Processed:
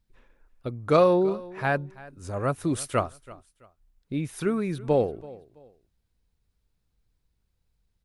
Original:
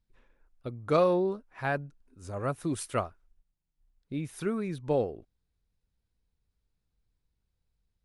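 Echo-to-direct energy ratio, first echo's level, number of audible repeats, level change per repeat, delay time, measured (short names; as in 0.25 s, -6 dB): -19.5 dB, -20.0 dB, 2, -11.0 dB, 0.331 s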